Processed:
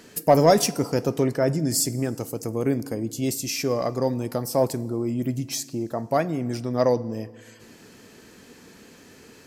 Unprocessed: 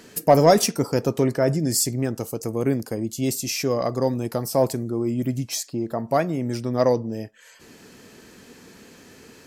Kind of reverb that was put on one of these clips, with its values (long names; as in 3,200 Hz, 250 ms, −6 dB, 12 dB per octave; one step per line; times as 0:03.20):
feedback delay network reverb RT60 1.6 s, low-frequency decay 1.3×, high-frequency decay 0.85×, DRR 18 dB
level −1.5 dB